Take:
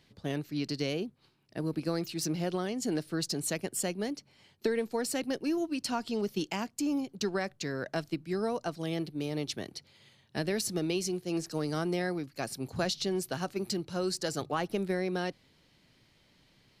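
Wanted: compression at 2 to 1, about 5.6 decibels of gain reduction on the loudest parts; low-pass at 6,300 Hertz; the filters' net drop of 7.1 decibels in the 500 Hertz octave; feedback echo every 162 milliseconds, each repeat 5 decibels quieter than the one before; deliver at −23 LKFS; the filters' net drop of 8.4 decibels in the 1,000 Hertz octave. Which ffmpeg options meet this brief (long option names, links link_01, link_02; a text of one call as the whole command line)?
ffmpeg -i in.wav -af "lowpass=6300,equalizer=frequency=500:width_type=o:gain=-8,equalizer=frequency=1000:width_type=o:gain=-8.5,acompressor=threshold=-41dB:ratio=2,aecho=1:1:162|324|486|648|810|972|1134:0.562|0.315|0.176|0.0988|0.0553|0.031|0.0173,volume=17.5dB" out.wav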